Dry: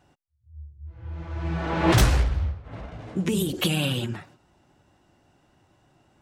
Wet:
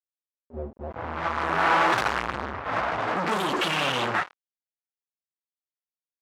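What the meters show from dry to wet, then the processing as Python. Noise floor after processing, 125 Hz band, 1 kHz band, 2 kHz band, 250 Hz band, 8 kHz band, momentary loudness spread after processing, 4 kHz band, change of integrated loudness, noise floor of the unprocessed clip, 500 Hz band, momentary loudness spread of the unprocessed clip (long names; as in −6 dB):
below −85 dBFS, −13.0 dB, +9.0 dB, +7.0 dB, −6.5 dB, −7.0 dB, 16 LU, 0.0 dB, 0.0 dB, −65 dBFS, +1.5 dB, 20 LU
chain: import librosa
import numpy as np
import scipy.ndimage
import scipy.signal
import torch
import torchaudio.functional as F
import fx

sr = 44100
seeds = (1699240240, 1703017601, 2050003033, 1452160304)

y = fx.fuzz(x, sr, gain_db=42.0, gate_db=-47.0)
y = fx.filter_sweep_bandpass(y, sr, from_hz=600.0, to_hz=1200.0, start_s=0.63, end_s=1.19, q=1.4)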